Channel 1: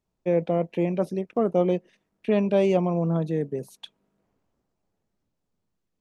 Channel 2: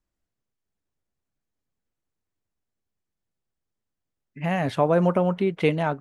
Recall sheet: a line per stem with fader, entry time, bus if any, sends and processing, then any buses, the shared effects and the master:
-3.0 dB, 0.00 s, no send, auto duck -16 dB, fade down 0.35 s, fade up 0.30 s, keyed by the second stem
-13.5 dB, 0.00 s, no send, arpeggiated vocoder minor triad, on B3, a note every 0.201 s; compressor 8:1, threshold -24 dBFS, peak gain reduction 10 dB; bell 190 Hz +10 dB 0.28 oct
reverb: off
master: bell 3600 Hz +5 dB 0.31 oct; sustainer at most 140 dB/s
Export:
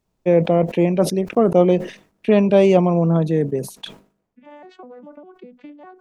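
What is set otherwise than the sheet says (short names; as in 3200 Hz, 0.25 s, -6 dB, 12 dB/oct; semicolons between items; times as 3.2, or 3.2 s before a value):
stem 1 -3.0 dB -> +7.5 dB; master: missing bell 3600 Hz +5 dB 0.31 oct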